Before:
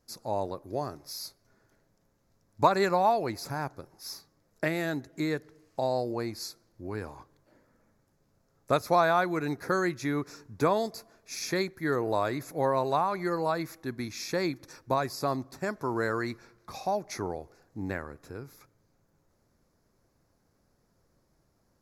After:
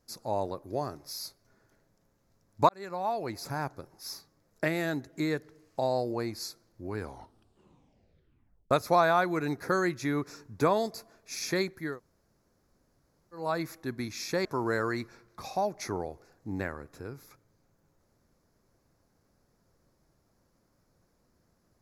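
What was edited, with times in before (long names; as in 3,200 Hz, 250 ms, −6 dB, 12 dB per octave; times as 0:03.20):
0:02.69–0:03.56: fade in
0:06.97: tape stop 1.74 s
0:11.88–0:13.43: fill with room tone, crossfade 0.24 s
0:14.45–0:15.75: remove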